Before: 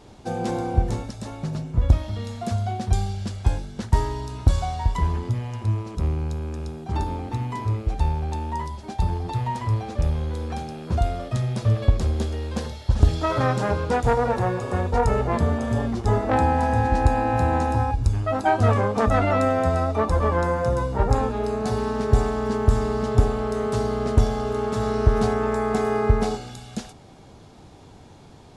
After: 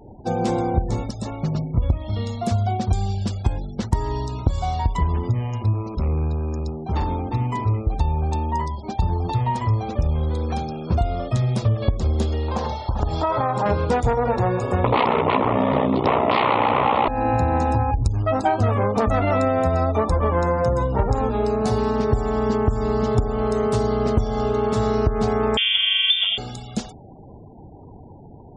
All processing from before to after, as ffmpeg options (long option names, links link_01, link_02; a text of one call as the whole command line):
ffmpeg -i in.wav -filter_complex "[0:a]asettb=1/sr,asplit=3[link_01][link_02][link_03];[link_01]atrim=end=5.734[link_04];[link_02]atrim=start=5.73:end=7.35,asetpts=PTS-STARTPTS,afade=type=in:duration=0.004:curve=qsin,afade=type=out:start_time=1.616:duration=0.004:curve=qsin,equalizer=frequency=120:width_type=o:width=0.4:gain=-3,volume=23dB,asoftclip=hard,volume=-23dB[link_05];[link_03]atrim=start=7.346[link_06];[link_04][link_05]acrossfade=duration=0.004:curve1=hsin:curve2=qsin[link_07];[link_07][link_06]acrossfade=duration=0.004:curve1=qsin:curve2=hsin,asettb=1/sr,asplit=3[link_08][link_09][link_10];[link_08]atrim=end=12.484[link_11];[link_09]atrim=start=12.48:end=13.66,asetpts=PTS-STARTPTS,afade=type=in:duration=0.004:curve=qsin,afade=type=out:start_time=1.176:duration=0.004:curve=qsin,equalizer=frequency=890:width_type=o:width=1.1:gain=13,acompressor=threshold=-25dB:ratio=3:attack=3.2:release=140:knee=1:detection=peak[link_12];[link_10]atrim=start=13.656[link_13];[link_11][link_12]acrossfade=duration=0.004:curve1=hsin:curve2=qsin[link_14];[link_14][link_13]acrossfade=duration=0.004:curve1=qsin:curve2=hsin,asettb=1/sr,asplit=3[link_15][link_16][link_17];[link_15]atrim=end=14.844[link_18];[link_16]atrim=start=14.84:end=17.08,asetpts=PTS-STARTPTS,afade=type=in:duration=0.004:curve=qsin,afade=type=out:start_time=2.236:duration=0.004:curve=qsin,aeval=exprs='0.531*sin(PI/2*5.62*val(0)/0.531)':channel_layout=same,aeval=exprs='val(0)*sin(2*PI*31*n/s)':channel_layout=same,highpass=160,equalizer=frequency=180:width_type=q:width=4:gain=-7,equalizer=frequency=340:width_type=q:width=4:gain=-4,equalizer=frequency=1000:width_type=q:width=4:gain=5,equalizer=frequency=1600:width_type=q:width=4:gain=-10,lowpass=frequency=3700:width=0.5412,lowpass=frequency=3700:width=1.3066[link_19];[link_17]atrim=start=17.076[link_20];[link_18][link_19]acrossfade=duration=0.004:curve1=hsin:curve2=qsin[link_21];[link_21][link_20]acrossfade=duration=0.004:curve1=qsin:curve2=hsin,asettb=1/sr,asplit=3[link_22][link_23][link_24];[link_22]atrim=end=25.574[link_25];[link_23]atrim=start=25.57:end=26.38,asetpts=PTS-STARTPTS,afade=type=in:duration=0.004:curve=qsin,afade=type=out:start_time=0.806:duration=0.004:curve=qsin,highpass=45,lowpass=frequency=3100:width_type=q:width=0.5098,lowpass=frequency=3100:width_type=q:width=0.6013,lowpass=frequency=3100:width_type=q:width=0.9,lowpass=frequency=3100:width_type=q:width=2.563,afreqshift=-3600[link_26];[link_24]atrim=start=26.376[link_27];[link_25][link_26]acrossfade=duration=0.004:curve1=hsin:curve2=qsin[link_28];[link_28][link_27]acrossfade=duration=0.004:curve1=qsin:curve2=hsin,equalizer=frequency=1600:width=3.5:gain=-4,acompressor=threshold=-20dB:ratio=10,afftfilt=real='re*gte(hypot(re,im),0.00631)':imag='im*gte(hypot(re,im),0.00631)':win_size=1024:overlap=0.75,volume=5dB" out.wav